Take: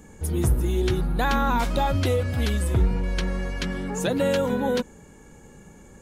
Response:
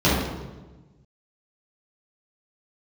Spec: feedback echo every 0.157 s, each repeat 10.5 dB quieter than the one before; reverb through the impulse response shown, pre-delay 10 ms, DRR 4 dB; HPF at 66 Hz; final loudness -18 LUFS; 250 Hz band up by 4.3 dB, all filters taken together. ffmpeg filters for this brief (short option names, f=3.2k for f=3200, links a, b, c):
-filter_complex "[0:a]highpass=66,equalizer=f=250:t=o:g=5.5,aecho=1:1:157|314|471:0.299|0.0896|0.0269,asplit=2[a][b];[1:a]atrim=start_sample=2205,adelay=10[c];[b][c]afir=irnorm=-1:irlink=0,volume=-24.5dB[d];[a][d]amix=inputs=2:normalize=0,volume=-1dB"